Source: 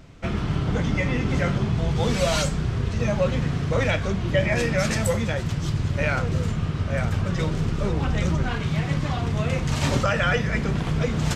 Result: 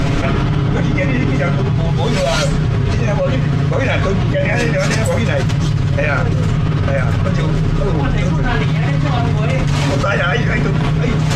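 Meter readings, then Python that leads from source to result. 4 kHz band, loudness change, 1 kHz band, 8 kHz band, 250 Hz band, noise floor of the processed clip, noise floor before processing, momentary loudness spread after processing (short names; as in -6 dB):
+6.5 dB, +8.5 dB, +8.5 dB, +4.0 dB, +8.5 dB, -17 dBFS, -29 dBFS, 1 LU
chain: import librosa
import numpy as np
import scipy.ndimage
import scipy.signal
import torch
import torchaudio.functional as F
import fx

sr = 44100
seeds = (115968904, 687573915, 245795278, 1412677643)

y = fx.high_shelf(x, sr, hz=6400.0, db=-8.5)
y = y + 0.51 * np.pad(y, (int(7.2 * sr / 1000.0), 0))[:len(y)]
y = fx.env_flatten(y, sr, amount_pct=100)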